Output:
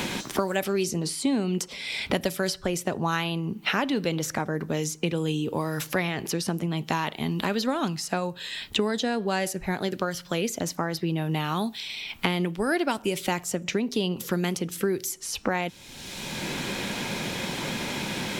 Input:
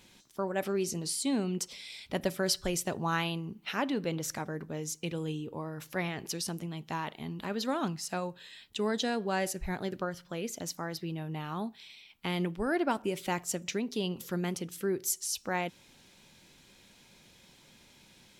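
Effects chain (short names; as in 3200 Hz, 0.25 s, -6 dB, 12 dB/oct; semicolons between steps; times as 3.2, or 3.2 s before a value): three-band squash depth 100%; gain +5.5 dB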